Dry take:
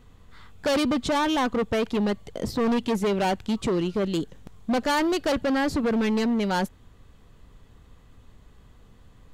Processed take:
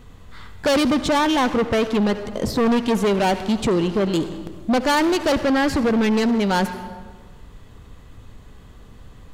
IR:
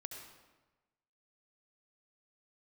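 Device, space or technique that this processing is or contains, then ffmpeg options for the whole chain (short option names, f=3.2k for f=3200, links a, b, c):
saturated reverb return: -filter_complex "[0:a]asplit=2[a][b];[1:a]atrim=start_sample=2205[c];[b][c]afir=irnorm=-1:irlink=0,asoftclip=type=tanh:threshold=-34dB,volume=4.5dB[d];[a][d]amix=inputs=2:normalize=0,volume=2.5dB"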